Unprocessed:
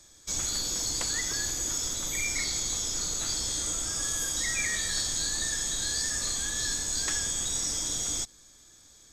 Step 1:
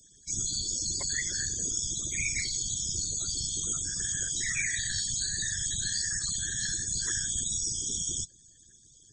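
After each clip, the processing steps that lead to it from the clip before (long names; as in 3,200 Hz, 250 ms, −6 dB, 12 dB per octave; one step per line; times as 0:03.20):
spectral peaks only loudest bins 64
random phases in short frames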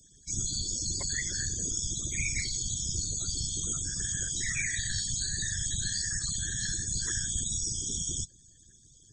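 low-shelf EQ 250 Hz +7 dB
level −1.5 dB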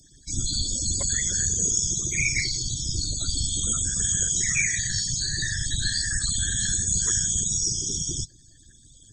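rippled gain that drifts along the octave scale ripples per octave 0.77, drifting −0.36 Hz, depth 9 dB
level +5.5 dB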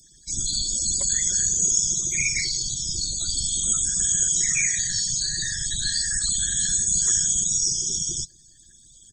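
high-shelf EQ 3,100 Hz +9.5 dB
comb filter 5.4 ms, depth 38%
level −5.5 dB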